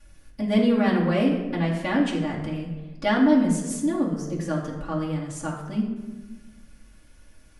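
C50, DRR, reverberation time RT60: 4.5 dB, -9.5 dB, 1.2 s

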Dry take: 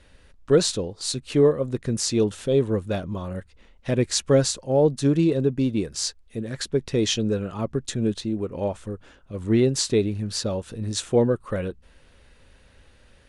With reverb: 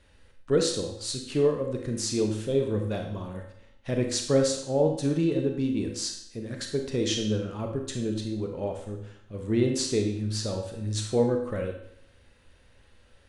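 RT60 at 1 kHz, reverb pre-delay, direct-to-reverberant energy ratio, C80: 0.70 s, 29 ms, 3.0 dB, 8.5 dB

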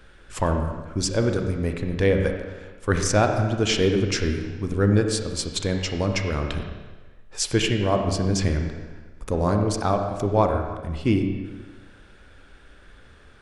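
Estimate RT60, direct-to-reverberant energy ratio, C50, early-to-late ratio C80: 1.3 s, 4.0 dB, 5.0 dB, 6.5 dB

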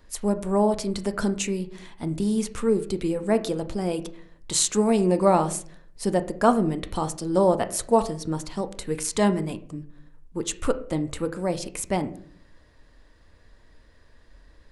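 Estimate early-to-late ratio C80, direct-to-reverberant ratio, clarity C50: 18.5 dB, 9.5 dB, 15.0 dB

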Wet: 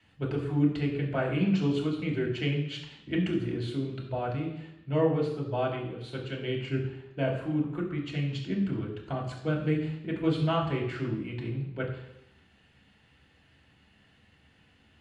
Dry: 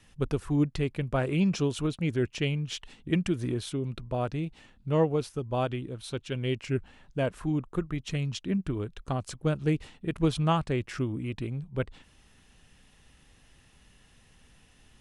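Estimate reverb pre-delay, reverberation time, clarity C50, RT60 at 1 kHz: 3 ms, 0.85 s, 6.0 dB, 0.85 s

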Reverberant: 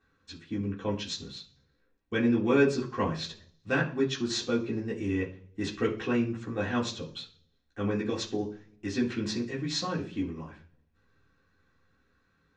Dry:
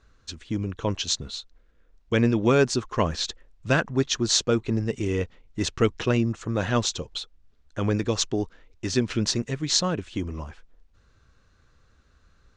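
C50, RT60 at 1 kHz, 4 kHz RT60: 11.5 dB, 0.40 s, 0.50 s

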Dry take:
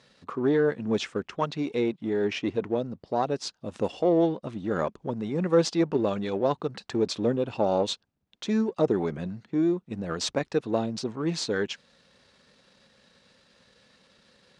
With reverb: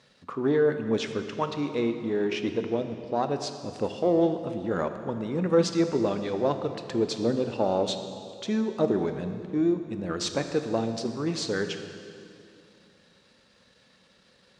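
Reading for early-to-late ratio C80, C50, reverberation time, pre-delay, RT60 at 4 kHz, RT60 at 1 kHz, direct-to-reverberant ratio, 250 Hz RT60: 9.0 dB, 8.5 dB, 2.5 s, 19 ms, 2.3 s, 2.4 s, 7.5 dB, 2.9 s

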